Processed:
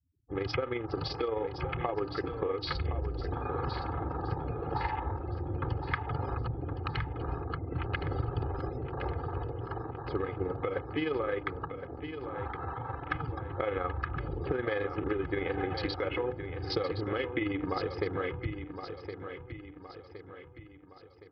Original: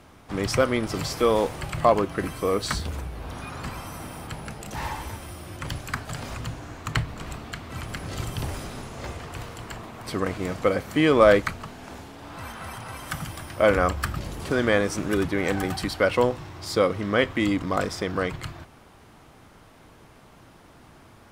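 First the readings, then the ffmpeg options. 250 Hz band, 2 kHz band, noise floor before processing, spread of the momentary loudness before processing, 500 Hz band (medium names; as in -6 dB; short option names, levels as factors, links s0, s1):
-9.0 dB, -9.5 dB, -51 dBFS, 16 LU, -9.5 dB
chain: -af "bandreject=f=301:t=h:w=4,bandreject=f=602:t=h:w=4,bandreject=f=903:t=h:w=4,bandreject=f=1204:t=h:w=4,bandreject=f=1505:t=h:w=4,bandreject=f=1806:t=h:w=4,bandreject=f=2107:t=h:w=4,bandreject=f=2408:t=h:w=4,bandreject=f=2709:t=h:w=4,bandreject=f=3010:t=h:w=4,bandreject=f=3311:t=h:w=4,bandreject=f=3612:t=h:w=4,bandreject=f=3913:t=h:w=4,afftfilt=real='re*gte(hypot(re,im),0.0141)':imag='im*gte(hypot(re,im),0.0141)':win_size=1024:overlap=0.75,highpass=64,afwtdn=0.0158,aecho=1:1:2.4:0.84,dynaudnorm=f=170:g=21:m=2.66,alimiter=limit=0.355:level=0:latency=1:release=105,acompressor=threshold=0.0501:ratio=8,tremolo=f=23:d=0.519,aecho=1:1:1066|2132|3198|4264|5330:0.355|0.167|0.0784|0.0368|0.0173,aresample=11025,aresample=44100,volume=0.891" -ar 44100 -c:a aac -b:a 96k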